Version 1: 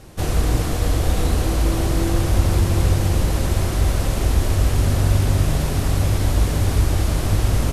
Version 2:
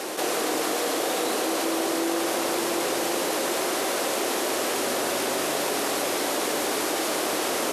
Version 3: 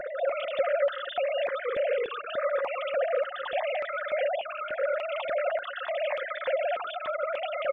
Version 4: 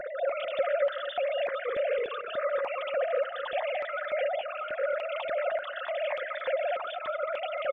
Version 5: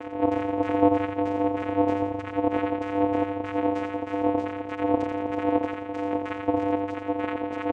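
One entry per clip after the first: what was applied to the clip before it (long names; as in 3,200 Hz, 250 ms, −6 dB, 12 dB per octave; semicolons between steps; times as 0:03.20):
high-pass filter 330 Hz 24 dB per octave; envelope flattener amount 70%
three sine waves on the formant tracks; comb filter 5.6 ms, depth 30%; step-sequenced phaser 3.4 Hz 810–2,800 Hz
repeating echo 223 ms, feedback 28%, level −13.5 dB; level −1.5 dB
auto-filter low-pass saw down 3.2 Hz 390–2,300 Hz; echo with shifted repeats 85 ms, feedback 51%, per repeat −46 Hz, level −5.5 dB; channel vocoder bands 4, square 99.1 Hz; level +1 dB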